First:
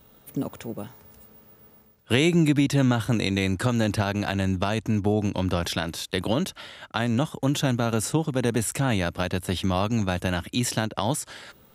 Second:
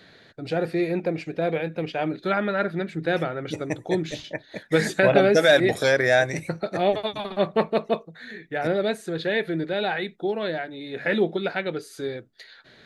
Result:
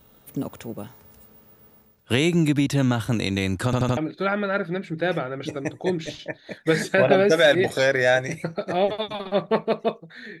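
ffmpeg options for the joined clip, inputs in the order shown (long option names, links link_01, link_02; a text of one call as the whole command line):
ffmpeg -i cue0.wav -i cue1.wav -filter_complex "[0:a]apad=whole_dur=10.4,atrim=end=10.4,asplit=4[link_01][link_02][link_03][link_04];[link_01]atrim=end=3.732[link_05];[link_02]atrim=start=3.648:end=3.732[link_06];[link_03]atrim=start=3.648:end=3.732[link_07];[link_04]atrim=start=3.648:end=3.732[link_08];[1:a]atrim=start=2.018:end=8.45[link_09];[link_05][link_06]acrossfade=duration=0.004:curve1=hsin:curve2=hsin[link_10];[link_10][link_07]acrossfade=duration=0.004:curve1=hsin:curve2=hsin[link_11];[link_11][link_08]acrossfade=duration=0.004:curve1=hsin:curve2=hsin[link_12];[link_12][link_09]acrossfade=duration=0.004:curve1=hsin:curve2=hsin" out.wav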